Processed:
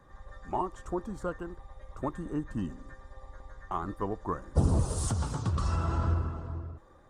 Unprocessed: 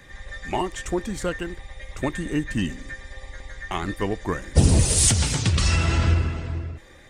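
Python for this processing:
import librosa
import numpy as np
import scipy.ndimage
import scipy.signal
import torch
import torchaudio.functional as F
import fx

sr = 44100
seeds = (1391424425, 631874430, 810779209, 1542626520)

y = fx.high_shelf_res(x, sr, hz=1600.0, db=-10.5, q=3.0)
y = y * 10.0 ** (-8.5 / 20.0)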